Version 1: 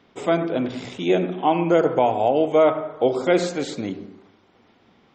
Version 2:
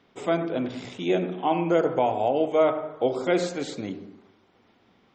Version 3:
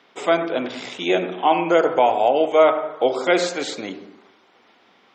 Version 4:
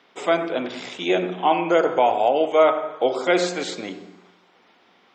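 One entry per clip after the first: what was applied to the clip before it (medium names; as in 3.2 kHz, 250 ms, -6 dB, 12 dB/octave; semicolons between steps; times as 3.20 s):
de-hum 76.37 Hz, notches 14; trim -4 dB
frequency weighting A; trim +8.5 dB
feedback comb 180 Hz, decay 1.3 s, mix 60%; trim +6 dB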